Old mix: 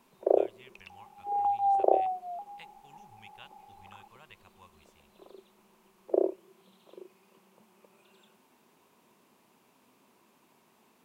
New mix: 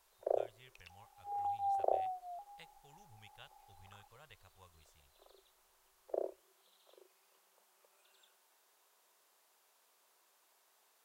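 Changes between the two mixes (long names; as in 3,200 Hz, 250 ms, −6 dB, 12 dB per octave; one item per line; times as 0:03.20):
first sound: add high-pass filter 810 Hz 12 dB per octave
second sound −5.0 dB
master: add graphic EQ with 15 bands 250 Hz −11 dB, 1,000 Hz −8 dB, 2,500 Hz −9 dB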